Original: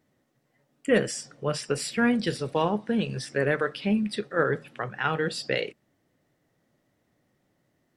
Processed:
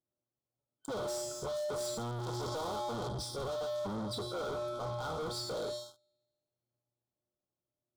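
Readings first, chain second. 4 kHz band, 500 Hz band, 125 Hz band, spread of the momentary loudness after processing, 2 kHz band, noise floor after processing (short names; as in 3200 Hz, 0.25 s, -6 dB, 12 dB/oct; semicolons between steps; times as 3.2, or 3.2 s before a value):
-6.5 dB, -8.5 dB, -8.5 dB, 3 LU, -20.5 dB, under -85 dBFS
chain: octaver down 1 oct, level -4 dB; bell 2200 Hz -11.5 dB 1.3 oct; resonator 120 Hz, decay 1.4 s, harmonics odd, mix 90%; on a send: thin delay 77 ms, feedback 66%, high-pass 1800 Hz, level -19 dB; on the sum: dynamic EQ 670 Hz, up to +5 dB, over -54 dBFS, Q 0.74; sample leveller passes 5; spectral gain 2.2–3.08, 240–8100 Hz +12 dB; hard clip -33 dBFS, distortion -3 dB; FFT band-reject 1500–3100 Hz; limiter -37.5 dBFS, peak gain reduction 9 dB; overdrive pedal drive 6 dB, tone 5100 Hz, clips at -37.5 dBFS; gain +6.5 dB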